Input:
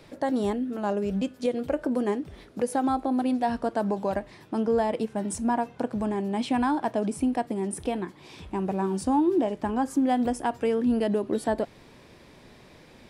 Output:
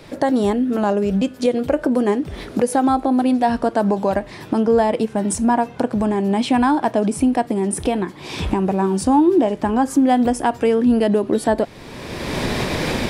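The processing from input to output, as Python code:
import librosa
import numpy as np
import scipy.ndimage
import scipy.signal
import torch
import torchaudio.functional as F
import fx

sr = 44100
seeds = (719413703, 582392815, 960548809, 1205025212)

y = fx.recorder_agc(x, sr, target_db=-21.0, rise_db_per_s=28.0, max_gain_db=30)
y = y * librosa.db_to_amplitude(8.5)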